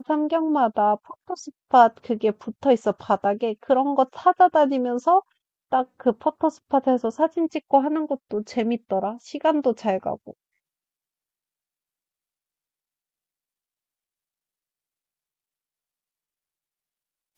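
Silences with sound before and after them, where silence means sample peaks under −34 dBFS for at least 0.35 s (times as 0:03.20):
0:05.20–0:05.72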